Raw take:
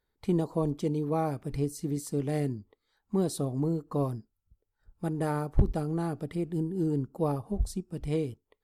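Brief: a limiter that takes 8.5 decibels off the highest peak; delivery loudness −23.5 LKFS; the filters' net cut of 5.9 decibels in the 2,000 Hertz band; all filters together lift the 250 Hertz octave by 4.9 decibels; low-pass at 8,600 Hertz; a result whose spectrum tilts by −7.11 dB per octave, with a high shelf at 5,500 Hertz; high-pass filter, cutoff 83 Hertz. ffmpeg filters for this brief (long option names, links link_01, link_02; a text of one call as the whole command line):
ffmpeg -i in.wav -af "highpass=83,lowpass=8600,equalizer=frequency=250:width_type=o:gain=7.5,equalizer=frequency=2000:width_type=o:gain=-8,highshelf=frequency=5500:gain=-4.5,volume=7dB,alimiter=limit=-12dB:level=0:latency=1" out.wav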